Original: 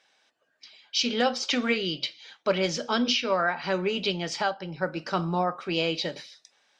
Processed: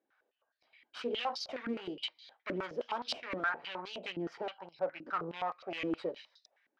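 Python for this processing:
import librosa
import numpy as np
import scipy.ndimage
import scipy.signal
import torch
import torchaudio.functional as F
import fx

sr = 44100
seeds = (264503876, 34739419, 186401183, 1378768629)

y = fx.high_shelf(x, sr, hz=3000.0, db=-10.0)
y = fx.tube_stage(y, sr, drive_db=28.0, bias=0.7)
y = fx.filter_held_bandpass(y, sr, hz=9.6, low_hz=300.0, high_hz=4300.0)
y = F.gain(torch.from_numpy(y), 7.5).numpy()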